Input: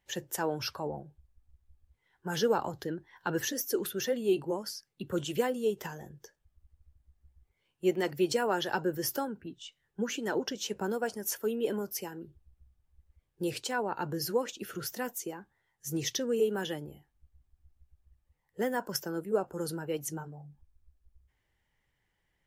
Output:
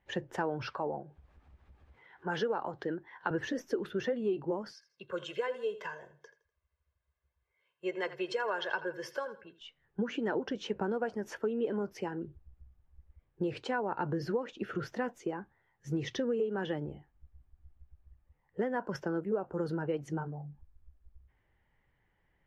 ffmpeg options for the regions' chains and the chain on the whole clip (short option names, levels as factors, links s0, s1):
-filter_complex "[0:a]asettb=1/sr,asplit=3[s0][s1][s2];[s0]atrim=end=0.694[s3];[s1]atrim=start=0.69:end=3.31,asetpts=PTS-STARTPTS,afade=t=in:d=0.004:c=qsin,afade=t=out:st=2.616:d=0.004:c=qsin,highpass=f=380:p=1,acompressor=mode=upward:threshold=0.00398:ratio=2.5:attack=3.2:release=140:knee=2.83:detection=peak[s4];[s2]atrim=start=3.306[s5];[s3][s4]acrossfade=d=0.004:c1=hsin:c2=qsin[s6];[s6][s5]acrossfade=d=0.004:c1=qsin:c2=hsin,asettb=1/sr,asplit=3[s7][s8][s9];[s7]atrim=end=4.734[s10];[s8]atrim=start=4.73:end=9.61,asetpts=PTS-STARTPTS,afade=t=in:d=0.004:c=qsin,afade=t=out:st=4.876:d=0.004:c=qsin,highpass=f=1500:p=1,aecho=1:1:1.9:0.7,atrim=end_sample=215208,aecho=1:1:82|164|246:0.158|0.0555|0.0194,atrim=end_sample=215208[s11];[s9]atrim=start=9.606[s12];[s10][s11]acrossfade=d=0.004:c1=hsin:c2=qsin[s13];[s13][s12]acrossfade=d=0.004:c1=qsin:c2=hsin,lowpass=2000,acompressor=threshold=0.02:ratio=6,volume=1.78"